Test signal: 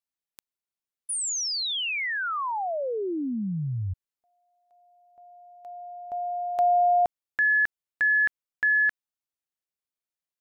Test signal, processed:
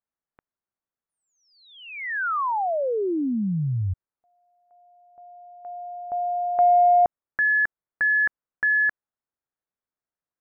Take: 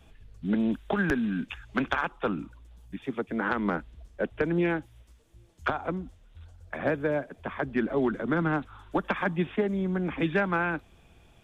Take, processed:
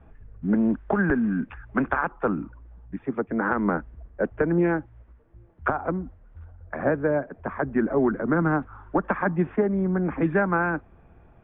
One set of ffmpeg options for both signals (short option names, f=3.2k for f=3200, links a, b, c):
-af "acontrast=82,lowpass=f=1.7k:w=0.5412,lowpass=f=1.7k:w=1.3066,volume=-2.5dB"